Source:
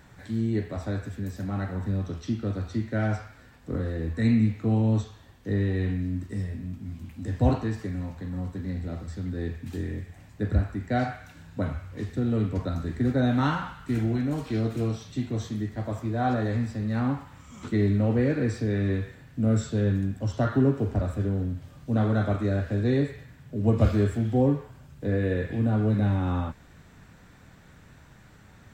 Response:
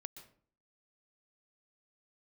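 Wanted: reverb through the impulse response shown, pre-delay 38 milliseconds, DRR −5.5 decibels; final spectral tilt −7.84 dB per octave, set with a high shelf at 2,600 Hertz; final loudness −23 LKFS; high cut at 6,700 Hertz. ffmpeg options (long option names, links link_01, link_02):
-filter_complex "[0:a]lowpass=6700,highshelf=frequency=2600:gain=-4.5,asplit=2[link_01][link_02];[1:a]atrim=start_sample=2205,adelay=38[link_03];[link_02][link_03]afir=irnorm=-1:irlink=0,volume=10dB[link_04];[link_01][link_04]amix=inputs=2:normalize=0,volume=-1.5dB"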